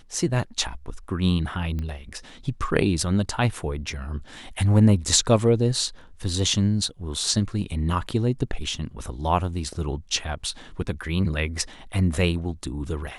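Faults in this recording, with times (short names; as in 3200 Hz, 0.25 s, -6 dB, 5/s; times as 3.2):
1.79 pop -20 dBFS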